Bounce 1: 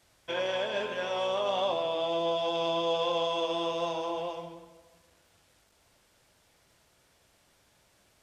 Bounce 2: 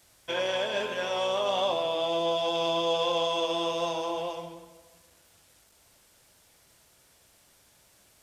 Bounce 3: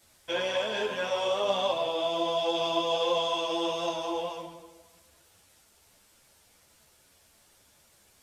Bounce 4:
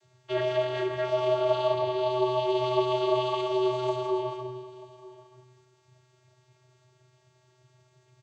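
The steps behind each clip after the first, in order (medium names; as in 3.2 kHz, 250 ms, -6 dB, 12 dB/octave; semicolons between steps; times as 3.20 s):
treble shelf 6.4 kHz +10.5 dB; trim +1.5 dB
three-phase chorus; trim +2.5 dB
vocoder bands 16, square 126 Hz; delay 934 ms -20 dB; trim +3 dB; Opus 48 kbps 48 kHz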